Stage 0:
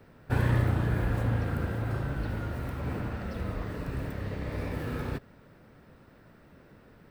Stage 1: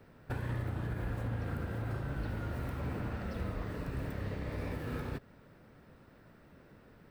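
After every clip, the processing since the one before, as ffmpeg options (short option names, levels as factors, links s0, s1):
-af "alimiter=level_in=1.06:limit=0.0631:level=0:latency=1:release=239,volume=0.944,volume=0.708"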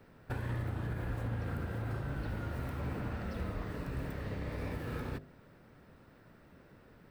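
-af "bandreject=f=50.39:t=h:w=4,bandreject=f=100.78:t=h:w=4,bandreject=f=151.17:t=h:w=4,bandreject=f=201.56:t=h:w=4,bandreject=f=251.95:t=h:w=4,bandreject=f=302.34:t=h:w=4,bandreject=f=352.73:t=h:w=4,bandreject=f=403.12:t=h:w=4,bandreject=f=453.51:t=h:w=4,bandreject=f=503.9:t=h:w=4,bandreject=f=554.29:t=h:w=4,bandreject=f=604.68:t=h:w=4,bandreject=f=655.07:t=h:w=4,bandreject=f=705.46:t=h:w=4"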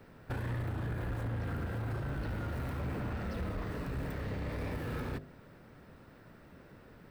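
-af "asoftclip=type=tanh:threshold=0.02,volume=1.5"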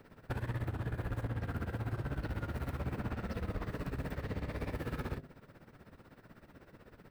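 -af "tremolo=f=16:d=0.79,volume=1.26"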